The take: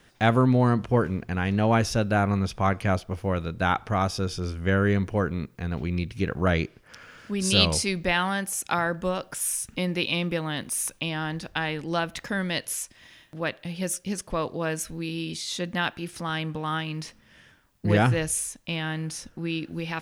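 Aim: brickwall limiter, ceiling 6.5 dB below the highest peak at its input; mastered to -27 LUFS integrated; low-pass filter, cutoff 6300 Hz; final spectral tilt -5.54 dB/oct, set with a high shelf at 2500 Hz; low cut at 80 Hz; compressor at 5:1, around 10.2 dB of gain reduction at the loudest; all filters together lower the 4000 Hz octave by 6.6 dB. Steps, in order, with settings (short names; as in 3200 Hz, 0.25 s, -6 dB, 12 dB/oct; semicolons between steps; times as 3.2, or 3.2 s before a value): HPF 80 Hz; LPF 6300 Hz; high shelf 2500 Hz -5.5 dB; bell 4000 Hz -3.5 dB; compressor 5:1, threshold -28 dBFS; gain +8.5 dB; limiter -15 dBFS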